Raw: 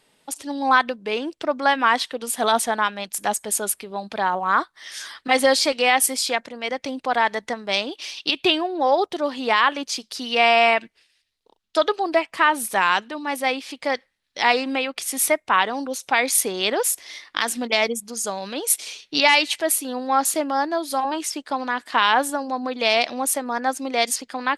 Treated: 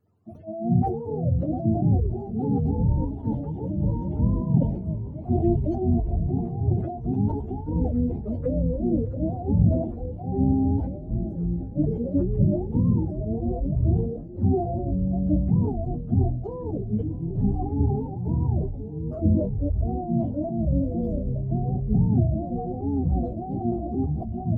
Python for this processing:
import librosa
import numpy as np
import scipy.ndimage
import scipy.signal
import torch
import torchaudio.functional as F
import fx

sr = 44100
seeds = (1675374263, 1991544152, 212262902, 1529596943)

y = fx.octave_mirror(x, sr, pivot_hz=430.0)
y = fx.echo_swing(y, sr, ms=1019, ratio=1.5, feedback_pct=64, wet_db=-22)
y = fx.echo_pitch(y, sr, ms=253, semitones=-6, count=3, db_per_echo=-3.0)
y = fx.sustainer(y, sr, db_per_s=62.0)
y = y * librosa.db_to_amplitude(-5.0)